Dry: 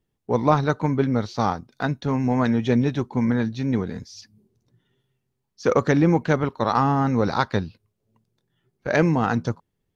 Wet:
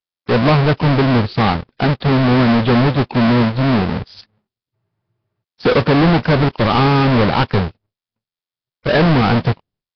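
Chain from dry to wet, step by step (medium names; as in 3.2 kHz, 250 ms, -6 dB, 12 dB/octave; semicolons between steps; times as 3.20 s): square wave that keeps the level; expander -49 dBFS; waveshaping leveller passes 3; spectral freeze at 4.75 s, 0.68 s; trim -3.5 dB; Nellymoser 22 kbps 11.025 kHz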